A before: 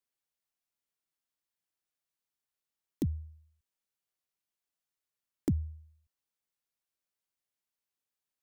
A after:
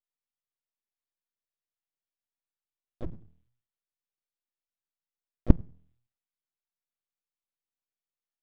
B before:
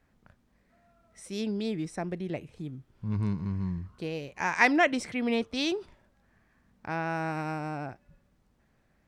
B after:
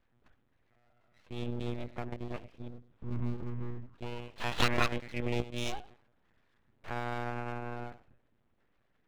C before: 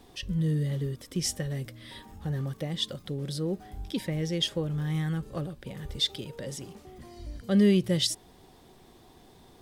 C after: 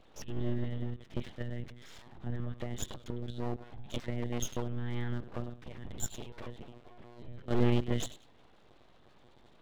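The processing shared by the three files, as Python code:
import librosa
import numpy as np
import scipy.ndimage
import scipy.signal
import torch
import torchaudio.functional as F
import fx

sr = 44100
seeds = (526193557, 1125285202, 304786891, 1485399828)

y = fx.echo_feedback(x, sr, ms=95, feedback_pct=20, wet_db=-16.0)
y = fx.lpc_monotone(y, sr, seeds[0], pitch_hz=120.0, order=16)
y = np.abs(y)
y = y * librosa.db_to_amplitude(-4.0)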